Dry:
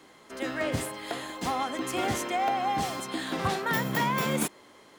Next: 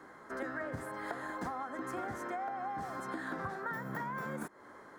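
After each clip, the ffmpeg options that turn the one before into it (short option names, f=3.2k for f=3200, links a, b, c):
-af "highshelf=f=2.1k:t=q:w=3:g=-9.5,acompressor=threshold=-36dB:ratio=12"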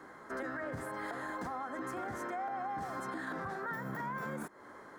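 -af "alimiter=level_in=8.5dB:limit=-24dB:level=0:latency=1:release=29,volume=-8.5dB,volume=1.5dB"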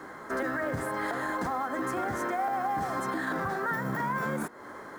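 -af "acrusher=bits=7:mode=log:mix=0:aa=0.000001,bandreject=f=240.7:t=h:w=4,bandreject=f=481.4:t=h:w=4,bandreject=f=722.1:t=h:w=4,bandreject=f=962.8:t=h:w=4,bandreject=f=1.2035k:t=h:w=4,bandreject=f=1.4442k:t=h:w=4,bandreject=f=1.6849k:t=h:w=4,bandreject=f=1.9256k:t=h:w=4,bandreject=f=2.1663k:t=h:w=4,bandreject=f=2.407k:t=h:w=4,bandreject=f=2.6477k:t=h:w=4,bandreject=f=2.8884k:t=h:w=4,bandreject=f=3.1291k:t=h:w=4,bandreject=f=3.3698k:t=h:w=4,bandreject=f=3.6105k:t=h:w=4,bandreject=f=3.8512k:t=h:w=4,bandreject=f=4.0919k:t=h:w=4,bandreject=f=4.3326k:t=h:w=4,bandreject=f=4.5733k:t=h:w=4,bandreject=f=4.814k:t=h:w=4,volume=8.5dB"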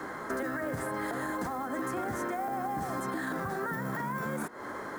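-filter_complex "[0:a]acrossover=split=420|7400[a][b][c];[a]acompressor=threshold=-41dB:ratio=4[d];[b]acompressor=threshold=-41dB:ratio=4[e];[c]acompressor=threshold=-53dB:ratio=4[f];[d][e][f]amix=inputs=3:normalize=0,volume=5dB"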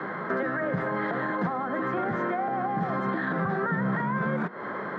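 -af "highpass=f=120:w=0.5412,highpass=f=120:w=1.3066,equalizer=f=180:t=q:w=4:g=9,equalizer=f=280:t=q:w=4:g=-7,equalizer=f=870:t=q:w=4:g=-3,equalizer=f=2.6k:t=q:w=4:g=-4,lowpass=f=3.2k:w=0.5412,lowpass=f=3.2k:w=1.3066,volume=6.5dB"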